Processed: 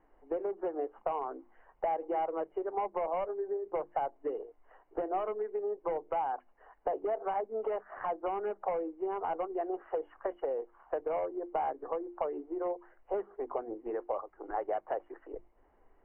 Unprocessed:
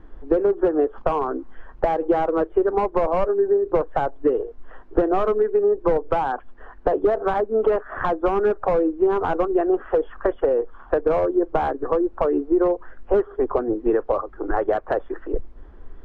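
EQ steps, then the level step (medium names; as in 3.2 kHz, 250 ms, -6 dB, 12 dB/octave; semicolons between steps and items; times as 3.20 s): rippled Chebyshev low-pass 3 kHz, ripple 9 dB; bass shelf 170 Hz -11.5 dB; hum notches 50/100/150/200/250/300/350 Hz; -8.0 dB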